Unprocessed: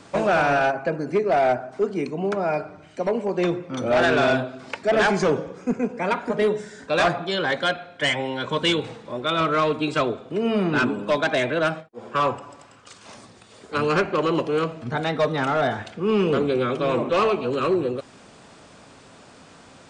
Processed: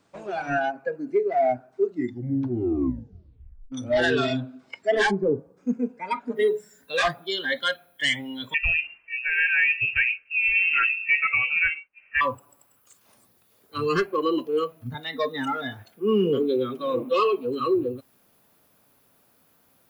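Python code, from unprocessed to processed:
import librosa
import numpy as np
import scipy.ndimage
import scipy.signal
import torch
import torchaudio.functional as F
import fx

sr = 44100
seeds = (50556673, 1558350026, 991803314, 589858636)

y = fx.bessel_lowpass(x, sr, hz=740.0, order=2, at=(5.1, 5.56), fade=0.02)
y = fx.noise_floor_step(y, sr, seeds[0], at_s=6.36, before_db=-70, after_db=-62, tilt_db=0.0)
y = fx.freq_invert(y, sr, carrier_hz=2900, at=(8.54, 12.21))
y = fx.highpass(y, sr, hz=130.0, slope=12, at=(14.94, 17.6))
y = fx.edit(y, sr, fx.tape_stop(start_s=1.77, length_s=1.95), tone=tone)
y = fx.noise_reduce_blind(y, sr, reduce_db=18)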